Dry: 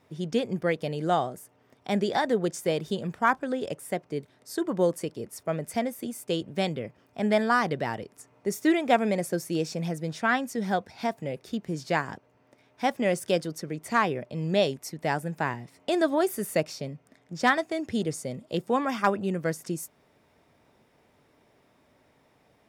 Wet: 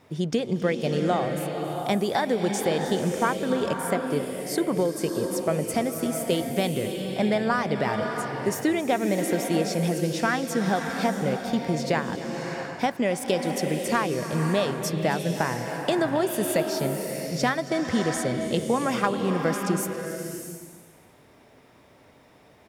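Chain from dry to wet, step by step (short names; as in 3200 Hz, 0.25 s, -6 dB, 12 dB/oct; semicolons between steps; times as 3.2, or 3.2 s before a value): compressor, threshold -28 dBFS, peak gain reduction 11.5 dB; echo 0.272 s -16 dB; bloom reverb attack 0.65 s, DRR 4 dB; gain +7 dB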